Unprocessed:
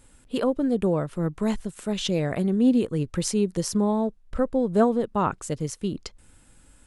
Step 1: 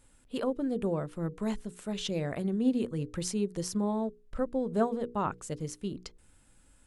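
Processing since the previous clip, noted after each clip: hum notches 60/120/180/240/300/360/420/480 Hz; trim -7 dB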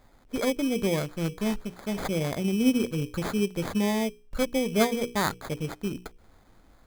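sample-rate reducer 2.8 kHz, jitter 0%; trim +4.5 dB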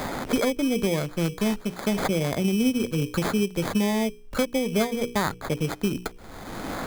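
three bands compressed up and down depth 100%; trim +2 dB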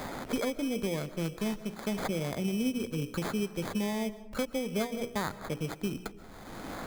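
reverberation RT60 1.1 s, pre-delay 100 ms, DRR 16 dB; trim -8 dB

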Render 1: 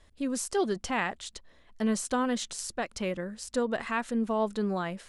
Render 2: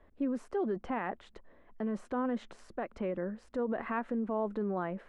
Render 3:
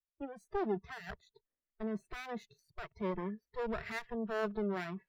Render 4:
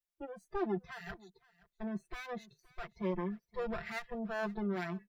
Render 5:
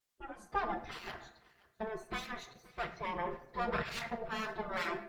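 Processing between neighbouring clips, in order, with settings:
tilt EQ -2.5 dB/octave; peak limiter -24.5 dBFS, peak gain reduction 10.5 dB; three-band isolator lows -16 dB, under 220 Hz, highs -23 dB, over 2.3 kHz; trim +1 dB
comb filter that takes the minimum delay 0.48 ms; spectral noise reduction 27 dB; three bands expanded up and down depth 40%
comb 5.8 ms, depth 76%; delay 521 ms -22.5 dB; trim -2 dB
simulated room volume 160 m³, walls mixed, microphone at 0.4 m; spectral gate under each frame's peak -10 dB weak; trim +8.5 dB; Opus 16 kbps 48 kHz

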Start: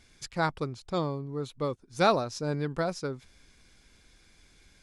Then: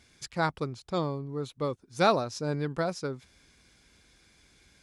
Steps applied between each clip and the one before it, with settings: high-pass 54 Hz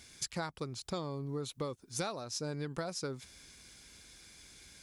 treble shelf 4.1 kHz +11 dB; compression 16:1, threshold -35 dBFS, peak gain reduction 19.5 dB; trim +1 dB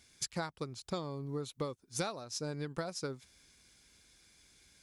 upward expansion 1.5:1, over -52 dBFS; trim +1.5 dB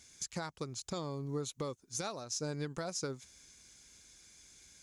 peaking EQ 6.6 kHz +10 dB 0.44 oct; peak limiter -29 dBFS, peak gain reduction 11 dB; trim +1 dB

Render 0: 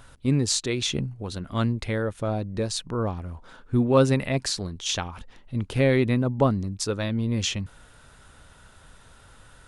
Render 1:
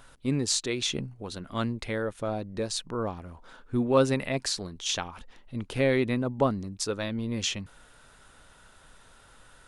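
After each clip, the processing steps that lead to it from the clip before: peaking EQ 81 Hz -8 dB 2.2 oct; trim -2 dB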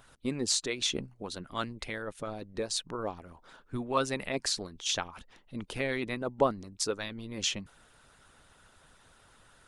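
harmonic-percussive split harmonic -12 dB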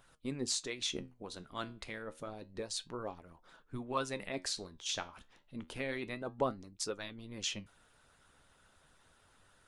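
flange 0.29 Hz, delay 5.4 ms, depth 9.9 ms, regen +73%; trim -2 dB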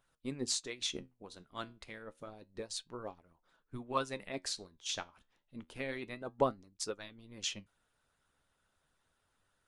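upward expansion 1.5:1, over -58 dBFS; trim +3.5 dB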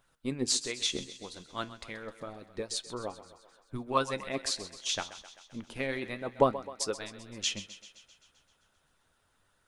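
thinning echo 130 ms, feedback 64%, high-pass 280 Hz, level -14 dB; trim +6 dB

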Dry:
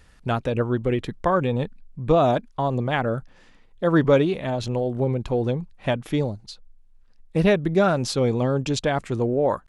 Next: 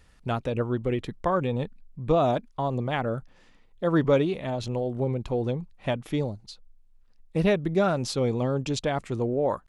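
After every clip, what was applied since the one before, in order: peaking EQ 1.6 kHz -3.5 dB 0.23 oct; trim -4 dB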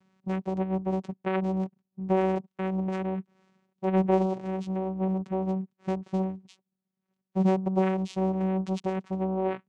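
vocoder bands 4, saw 189 Hz; trim -1 dB

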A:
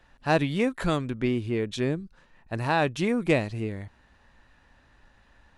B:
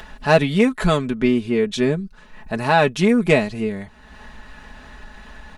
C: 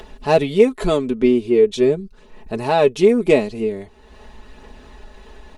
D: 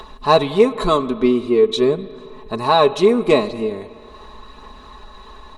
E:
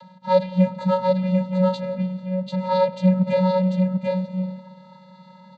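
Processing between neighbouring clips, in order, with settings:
in parallel at +2.5 dB: upward compressor, threshold -31 dBFS; on the sum: comb 4.7 ms, depth 68%; trim -1 dB
phaser 0.43 Hz, delay 4.1 ms, feedback 24%; fifteen-band graphic EQ 160 Hz -4 dB, 400 Hz +10 dB, 1.6 kHz -8 dB; trim -2 dB
small resonant body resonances 1.1/3.9 kHz, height 17 dB, ringing for 20 ms; on a send at -15 dB: reverberation RT60 2.2 s, pre-delay 49 ms; on the sum: trim -1 dB
vocoder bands 16, square 185 Hz; delay 742 ms -3.5 dB; trim -4 dB

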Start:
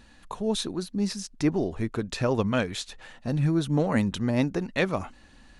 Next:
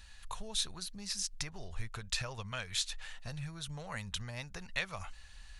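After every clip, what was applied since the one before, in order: bass shelf 89 Hz +7 dB; compression 4:1, threshold -28 dBFS, peak gain reduction 9.5 dB; amplifier tone stack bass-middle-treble 10-0-10; trim +3.5 dB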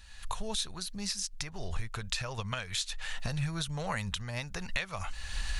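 recorder AGC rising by 33 dB/s

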